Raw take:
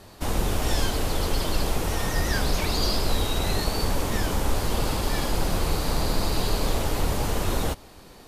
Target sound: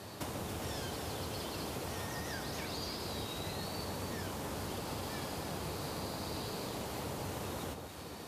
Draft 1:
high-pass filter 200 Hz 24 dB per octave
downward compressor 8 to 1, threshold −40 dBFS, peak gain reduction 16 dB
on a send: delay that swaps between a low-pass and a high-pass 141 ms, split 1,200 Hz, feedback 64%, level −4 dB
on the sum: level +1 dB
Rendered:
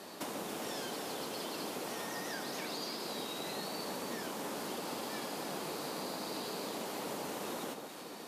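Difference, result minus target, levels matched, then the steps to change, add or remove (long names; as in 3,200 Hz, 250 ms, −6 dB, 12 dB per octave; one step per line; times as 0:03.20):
125 Hz band −11.5 dB
change: high-pass filter 83 Hz 24 dB per octave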